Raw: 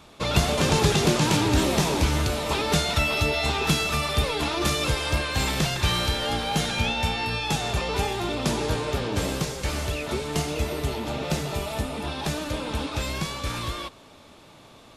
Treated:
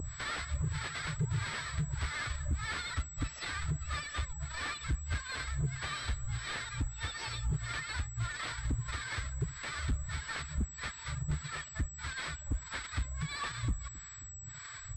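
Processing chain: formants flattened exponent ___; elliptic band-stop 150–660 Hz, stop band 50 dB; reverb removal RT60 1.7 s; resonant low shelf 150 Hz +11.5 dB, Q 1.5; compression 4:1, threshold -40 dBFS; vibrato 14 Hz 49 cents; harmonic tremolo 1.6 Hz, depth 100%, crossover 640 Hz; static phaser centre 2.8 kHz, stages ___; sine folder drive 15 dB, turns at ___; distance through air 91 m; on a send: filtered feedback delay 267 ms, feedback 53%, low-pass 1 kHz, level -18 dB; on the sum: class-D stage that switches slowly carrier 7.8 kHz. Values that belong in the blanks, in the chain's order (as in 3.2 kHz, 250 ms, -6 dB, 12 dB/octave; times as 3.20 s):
0.1, 6, -26.5 dBFS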